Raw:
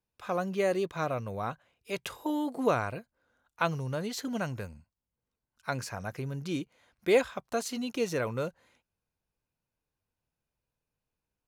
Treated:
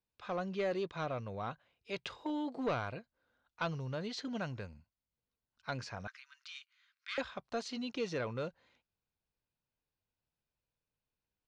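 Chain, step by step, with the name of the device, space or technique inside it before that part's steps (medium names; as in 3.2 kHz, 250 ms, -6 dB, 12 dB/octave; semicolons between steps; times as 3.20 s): overdriven synthesiser ladder filter (saturation -21.5 dBFS, distortion -14 dB; four-pole ladder low-pass 5.6 kHz, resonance 30%); 6.07–7.18 s: steep high-pass 1.2 kHz 48 dB/octave; trim +1.5 dB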